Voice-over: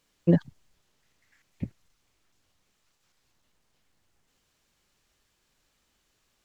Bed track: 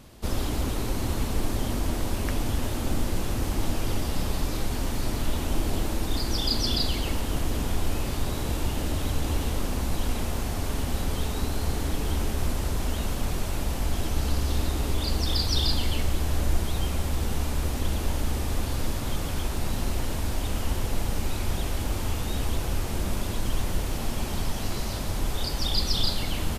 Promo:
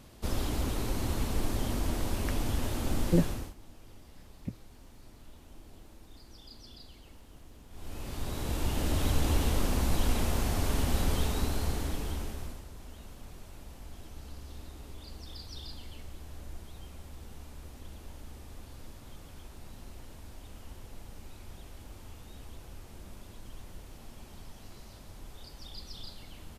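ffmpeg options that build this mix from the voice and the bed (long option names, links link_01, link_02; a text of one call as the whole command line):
ffmpeg -i stem1.wav -i stem2.wav -filter_complex "[0:a]adelay=2850,volume=-4.5dB[link_01];[1:a]volume=21dB,afade=type=out:start_time=3.21:duration=0.33:silence=0.0841395,afade=type=in:start_time=7.7:duration=1.37:silence=0.0562341,afade=type=out:start_time=11.09:duration=1.56:silence=0.112202[link_02];[link_01][link_02]amix=inputs=2:normalize=0" out.wav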